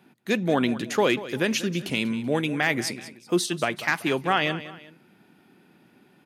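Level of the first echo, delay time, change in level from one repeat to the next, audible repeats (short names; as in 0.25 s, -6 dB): -15.0 dB, 0.19 s, -8.0 dB, 2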